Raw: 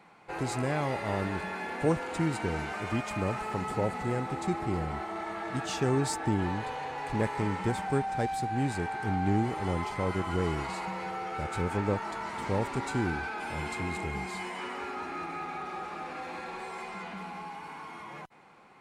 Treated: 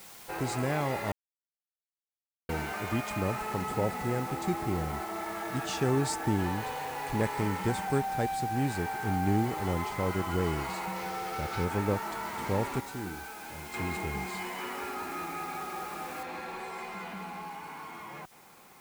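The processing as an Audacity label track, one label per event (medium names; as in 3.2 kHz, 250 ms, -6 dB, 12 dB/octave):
1.120000	2.490000	mute
6.290000	8.000000	treble shelf 5.1 kHz +4 dB
10.960000	11.650000	one-bit delta coder 32 kbps, step -39.5 dBFS
12.800000	13.740000	feedback comb 63 Hz, decay 0.46 s, harmonics odd, mix 70%
16.230000	16.230000	noise floor step -50 dB -60 dB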